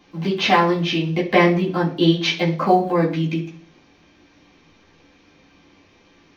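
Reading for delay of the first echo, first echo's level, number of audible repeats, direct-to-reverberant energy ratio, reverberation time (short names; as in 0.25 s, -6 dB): none, none, none, -6.5 dB, 0.45 s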